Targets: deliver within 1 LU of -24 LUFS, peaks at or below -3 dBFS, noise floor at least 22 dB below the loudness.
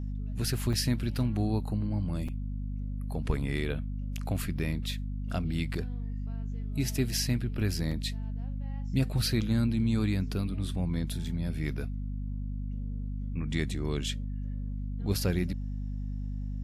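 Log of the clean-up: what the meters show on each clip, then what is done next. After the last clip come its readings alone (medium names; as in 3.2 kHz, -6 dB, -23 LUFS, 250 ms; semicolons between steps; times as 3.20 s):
dropouts 4; longest dropout 5.1 ms; hum 50 Hz; highest harmonic 250 Hz; hum level -32 dBFS; loudness -32.5 LUFS; peak level -14.5 dBFS; loudness target -24.0 LUFS
-> interpolate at 0.73/2.28/4.59/7.91 s, 5.1 ms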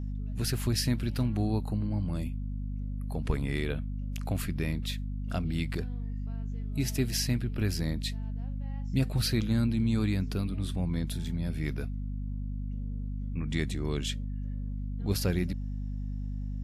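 dropouts 0; hum 50 Hz; highest harmonic 250 Hz; hum level -32 dBFS
-> de-hum 50 Hz, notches 5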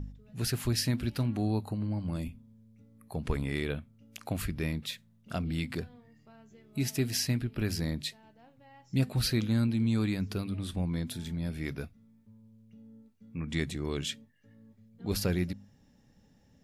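hum not found; loudness -33.0 LUFS; peak level -15.5 dBFS; loudness target -24.0 LUFS
-> trim +9 dB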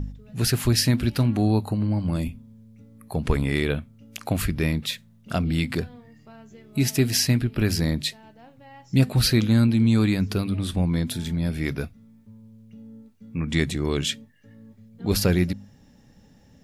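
loudness -24.0 LUFS; peak level -6.5 dBFS; noise floor -55 dBFS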